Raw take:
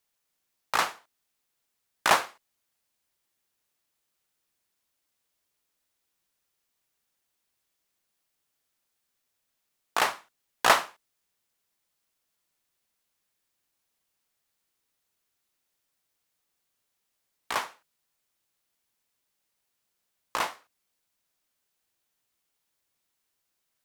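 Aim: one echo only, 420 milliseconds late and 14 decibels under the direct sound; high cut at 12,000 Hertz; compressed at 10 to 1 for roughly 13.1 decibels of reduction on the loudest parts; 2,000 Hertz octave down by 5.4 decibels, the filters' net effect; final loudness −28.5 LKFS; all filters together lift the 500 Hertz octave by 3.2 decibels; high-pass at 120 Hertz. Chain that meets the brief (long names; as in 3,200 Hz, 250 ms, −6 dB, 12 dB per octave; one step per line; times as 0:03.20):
high-pass filter 120 Hz
low-pass filter 12,000 Hz
parametric band 500 Hz +5 dB
parametric band 2,000 Hz −7.5 dB
downward compressor 10 to 1, threshold −29 dBFS
single-tap delay 420 ms −14 dB
level +11.5 dB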